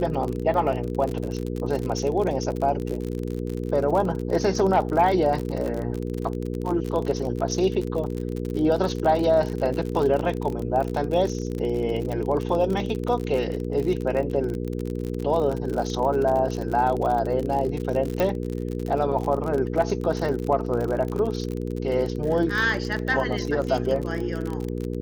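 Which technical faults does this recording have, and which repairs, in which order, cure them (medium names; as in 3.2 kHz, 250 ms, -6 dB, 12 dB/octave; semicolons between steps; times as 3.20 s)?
crackle 45 per s -27 dBFS
hum 60 Hz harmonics 8 -29 dBFS
18.20 s: pop -11 dBFS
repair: de-click; de-hum 60 Hz, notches 8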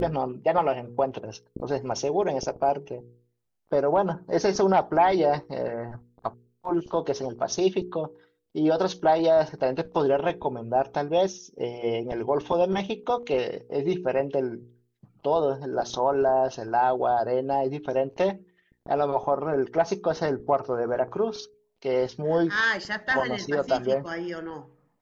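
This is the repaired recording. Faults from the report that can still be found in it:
nothing left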